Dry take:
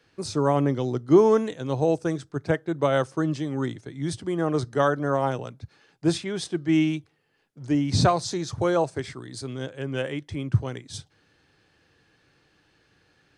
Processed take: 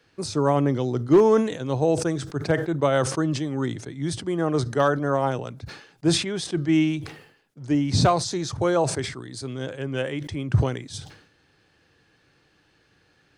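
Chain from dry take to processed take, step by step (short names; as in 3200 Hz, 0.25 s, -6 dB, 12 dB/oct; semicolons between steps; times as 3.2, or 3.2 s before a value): hard clip -10.5 dBFS, distortion -25 dB; sustainer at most 86 dB/s; gain +1 dB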